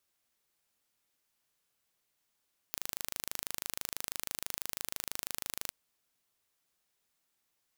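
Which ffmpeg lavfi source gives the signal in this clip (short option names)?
-f lavfi -i "aevalsrc='0.376*eq(mod(n,1690),0)':d=2.97:s=44100"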